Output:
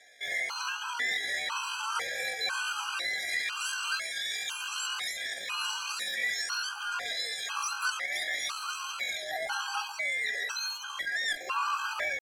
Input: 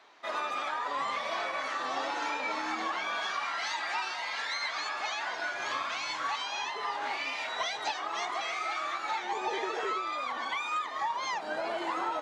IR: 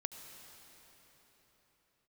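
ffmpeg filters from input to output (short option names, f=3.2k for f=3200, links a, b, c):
-filter_complex "[0:a]asetrate=76340,aresample=44100,atempo=0.577676,equalizer=f=800:t=o:w=1.1:g=2,asplit=2[a][b];[b]asoftclip=type=hard:threshold=-30.5dB,volume=-4dB[c];[a][c]amix=inputs=2:normalize=0,afftfilt=real='re*gt(sin(2*PI*1*pts/sr)*(1-2*mod(floor(b*sr/1024/810),2)),0)':imag='im*gt(sin(2*PI*1*pts/sr)*(1-2*mod(floor(b*sr/1024/810),2)),0)':win_size=1024:overlap=0.75"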